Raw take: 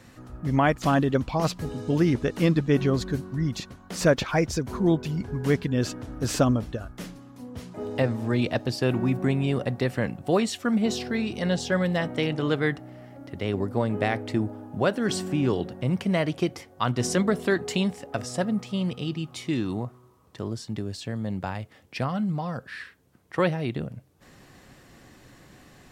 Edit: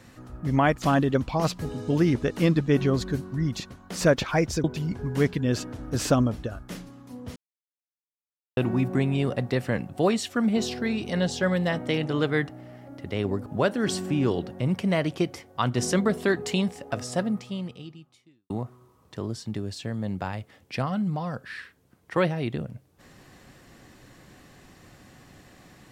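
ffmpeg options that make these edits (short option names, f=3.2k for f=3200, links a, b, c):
-filter_complex "[0:a]asplit=6[a][b][c][d][e][f];[a]atrim=end=4.642[g];[b]atrim=start=4.928:end=7.65,asetpts=PTS-STARTPTS,afade=t=out:st=2.718:d=0.004:c=hsin[h];[c]atrim=start=7.65:end=8.86,asetpts=PTS-STARTPTS,volume=0[i];[d]atrim=start=8.86:end=13.752,asetpts=PTS-STARTPTS,afade=t=in:d=0.004:c=hsin[j];[e]atrim=start=14.678:end=19.72,asetpts=PTS-STARTPTS,afade=t=out:st=3.792:d=1.25:c=qua[k];[f]atrim=start=19.72,asetpts=PTS-STARTPTS,afade=t=in:d=0.004:c=hsin[l];[h][i][j]concat=n=3:v=0:a=1[m];[g][m]acrossfade=d=0.004:c1=hsin:c2=hsin[n];[k][l]concat=n=2:v=0:a=1[o];[n][o]acrossfade=d=0.004:c1=hsin:c2=hsin"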